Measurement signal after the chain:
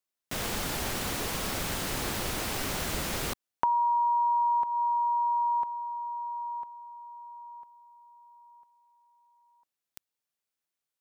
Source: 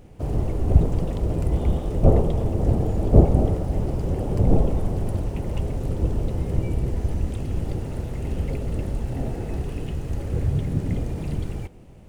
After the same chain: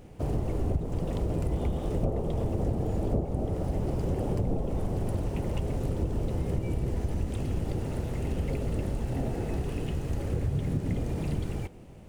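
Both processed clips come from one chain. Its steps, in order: bass shelf 84 Hz -5 dB; compression 10:1, threshold -24 dBFS

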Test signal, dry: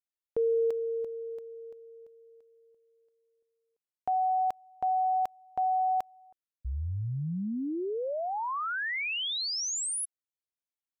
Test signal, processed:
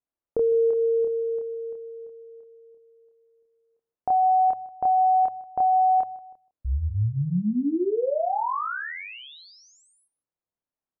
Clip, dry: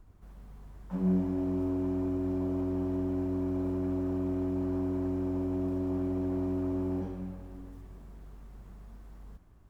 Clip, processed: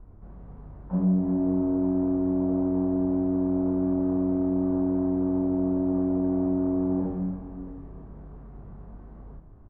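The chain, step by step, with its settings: low-pass 1 kHz 12 dB/octave; de-hum 72.43 Hz, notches 2; compression, threshold -30 dBFS; doubling 28 ms -2 dB; on a send: delay 155 ms -19.5 dB; on the sum: trim +7 dB

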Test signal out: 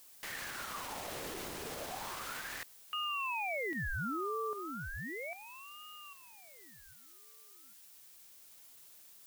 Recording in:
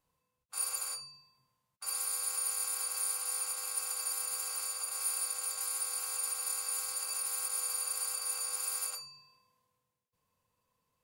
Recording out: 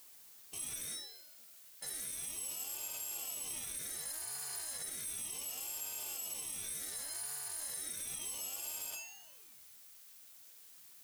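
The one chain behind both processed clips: reverse; compression, threshold -33 dBFS; reverse; peak limiter -33 dBFS; added noise blue -57 dBFS; ring modulator with a swept carrier 1.2 kHz, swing 70%, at 0.34 Hz; trim +2.5 dB

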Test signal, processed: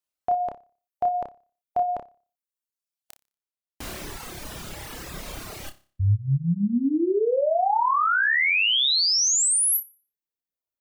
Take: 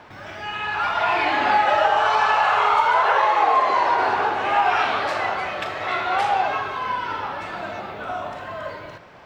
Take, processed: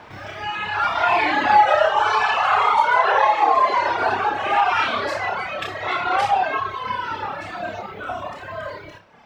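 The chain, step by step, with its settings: flutter echo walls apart 5.1 m, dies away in 0.4 s; reverb removal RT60 1.8 s; trim +2 dB

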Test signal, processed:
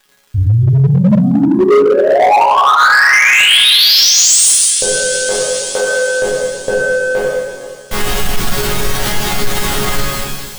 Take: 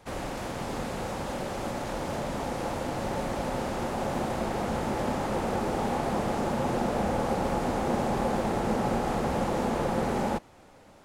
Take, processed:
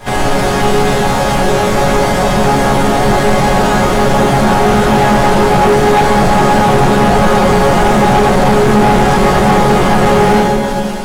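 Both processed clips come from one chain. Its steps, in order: in parallel at -4 dB: saturation -29 dBFS; on the sum: bass shelf 100 Hz +8 dB; reverb removal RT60 0.73 s; plate-style reverb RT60 1.7 s, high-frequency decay 1×, DRR -8 dB; crackle 260 per s -51 dBFS; hum notches 50/100/150 Hz; chord resonator C#3 sus4, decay 0.29 s; small resonant body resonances 1.6/3.2 kHz, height 7 dB, ringing for 20 ms; on a send: feedback echo behind a high-pass 195 ms, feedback 79%, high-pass 3.4 kHz, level -13.5 dB; on the sum: hard clipper -31 dBFS; loudness maximiser +35 dB; trim -4.5 dB

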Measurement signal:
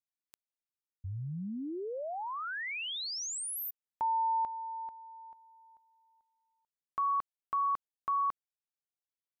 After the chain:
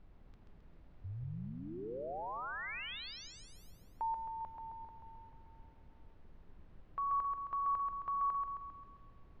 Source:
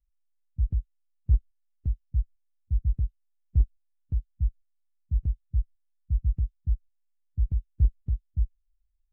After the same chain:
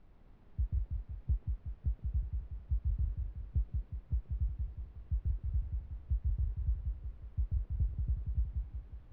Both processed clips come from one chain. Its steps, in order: peaking EQ 250 Hz -7 dB; compression, threshold -25 dBFS; added noise brown -53 dBFS; distance through air 230 m; two-band feedback delay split 310 Hz, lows 183 ms, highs 133 ms, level -4 dB; trim -4.5 dB

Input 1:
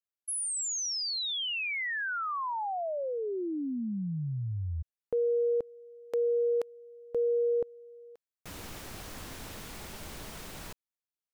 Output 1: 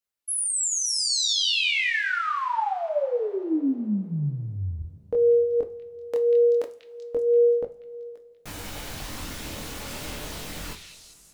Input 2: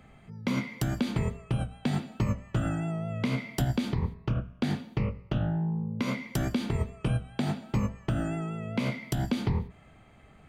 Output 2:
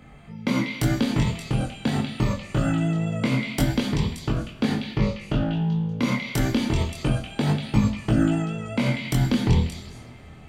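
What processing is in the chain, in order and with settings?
chorus voices 2, 0.25 Hz, delay 22 ms, depth 3.7 ms; repeats whose band climbs or falls 192 ms, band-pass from 3.1 kHz, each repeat 0.7 oct, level -2 dB; two-slope reverb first 0.3 s, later 3 s, from -19 dB, DRR 7 dB; trim +9 dB

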